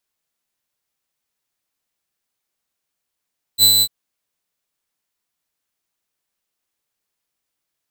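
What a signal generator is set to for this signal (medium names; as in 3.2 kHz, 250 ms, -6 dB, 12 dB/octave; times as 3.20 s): ADSR saw 4 kHz, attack 51 ms, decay 99 ms, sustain -4 dB, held 0.24 s, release 56 ms -5.5 dBFS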